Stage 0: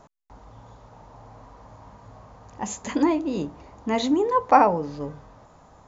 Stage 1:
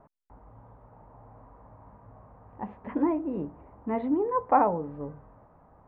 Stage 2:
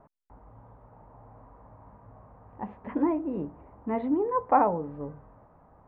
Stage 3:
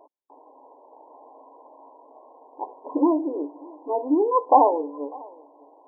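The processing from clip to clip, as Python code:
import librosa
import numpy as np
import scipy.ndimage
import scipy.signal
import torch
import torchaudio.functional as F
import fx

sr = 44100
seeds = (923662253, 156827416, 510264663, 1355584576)

y1 = scipy.signal.sosfilt(scipy.signal.bessel(6, 1300.0, 'lowpass', norm='mag', fs=sr, output='sos'), x)
y1 = y1 * 10.0 ** (-4.5 / 20.0)
y2 = y1
y3 = fx.brickwall_bandpass(y2, sr, low_hz=270.0, high_hz=1100.0)
y3 = y3 + 10.0 ** (-24.0 / 20.0) * np.pad(y3, (int(598 * sr / 1000.0), 0))[:len(y3)]
y3 = y3 * 10.0 ** (6.5 / 20.0)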